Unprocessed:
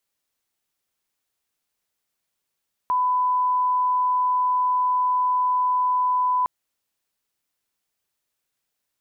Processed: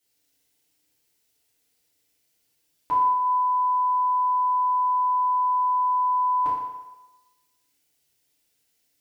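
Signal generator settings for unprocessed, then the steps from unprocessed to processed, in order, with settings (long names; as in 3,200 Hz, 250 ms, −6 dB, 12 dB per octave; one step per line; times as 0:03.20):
line-up tone −18 dBFS 3.56 s
parametric band 1,100 Hz −10.5 dB 1.2 octaves
feedback delay network reverb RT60 1.1 s, low-frequency decay 0.75×, high-frequency decay 0.9×, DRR −9 dB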